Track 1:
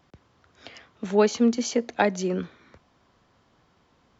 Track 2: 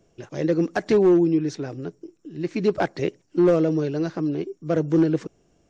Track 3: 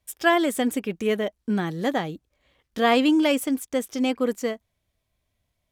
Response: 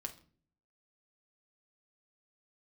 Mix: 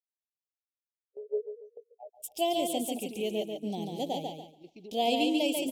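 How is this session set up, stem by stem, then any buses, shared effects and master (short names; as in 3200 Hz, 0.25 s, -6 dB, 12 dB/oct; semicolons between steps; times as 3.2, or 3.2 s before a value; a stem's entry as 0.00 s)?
-1.0 dB, 0.00 s, bus A, no send, echo send -7.5 dB, cycle switcher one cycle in 3, muted; steep high-pass 410 Hz 96 dB/oct; spectral expander 4:1
-15.5 dB, 2.20 s, bus A, no send, no echo send, treble ducked by the level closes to 900 Hz, closed at -14.5 dBFS
-4.0 dB, 2.15 s, no bus, no send, echo send -4 dB, dry
bus A: 0.0 dB, HPF 150 Hz 24 dB/oct; compressor 6:1, threshold -38 dBFS, peak gain reduction 22 dB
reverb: off
echo: feedback echo 0.142 s, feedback 33%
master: gate -44 dBFS, range -8 dB; Chebyshev band-stop 800–2700 Hz, order 3; low shelf 430 Hz -9 dB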